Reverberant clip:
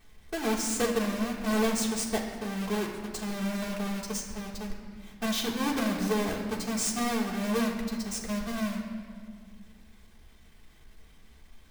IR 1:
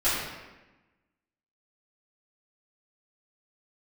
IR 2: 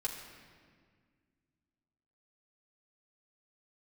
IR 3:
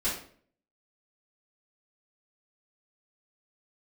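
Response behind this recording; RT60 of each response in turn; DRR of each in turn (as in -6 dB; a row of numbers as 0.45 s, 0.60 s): 2; 1.1 s, 1.8 s, 0.50 s; -14.5 dB, -4.5 dB, -11.0 dB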